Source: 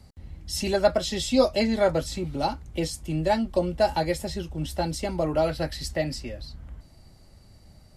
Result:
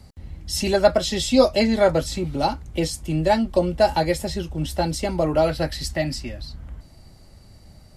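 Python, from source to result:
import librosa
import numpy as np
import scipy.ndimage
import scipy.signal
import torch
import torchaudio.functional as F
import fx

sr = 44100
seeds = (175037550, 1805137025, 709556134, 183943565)

y = fx.peak_eq(x, sr, hz=480.0, db=-14.5, octaves=0.26, at=(5.85, 6.48))
y = y * 10.0 ** (4.5 / 20.0)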